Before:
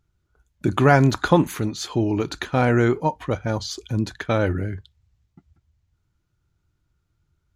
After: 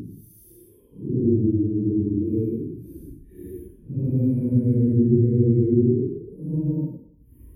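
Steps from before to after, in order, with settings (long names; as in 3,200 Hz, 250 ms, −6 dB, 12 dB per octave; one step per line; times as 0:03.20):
inverse Chebyshev band-stop filter 680–7,500 Hz, stop band 40 dB
extreme stretch with random phases 5×, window 0.10 s, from 0:01.73
level +1.5 dB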